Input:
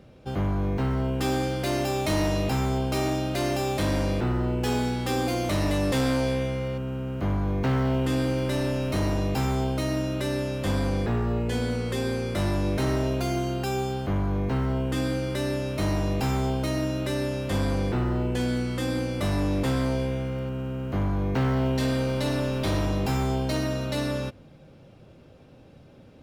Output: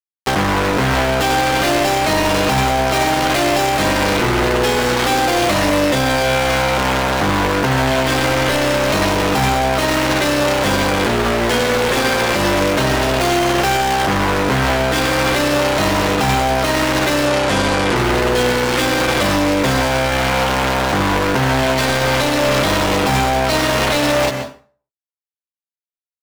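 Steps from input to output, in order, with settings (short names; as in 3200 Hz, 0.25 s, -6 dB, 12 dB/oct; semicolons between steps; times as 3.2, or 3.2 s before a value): bit-crush 5-bit; 17.25–17.96 steep low-pass 11000 Hz; overdrive pedal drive 17 dB, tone 3300 Hz, clips at -16 dBFS; doubler 14 ms -7 dB; reverb RT60 0.40 s, pre-delay 0.118 s, DRR 12 dB; maximiser +22 dB; gain -7.5 dB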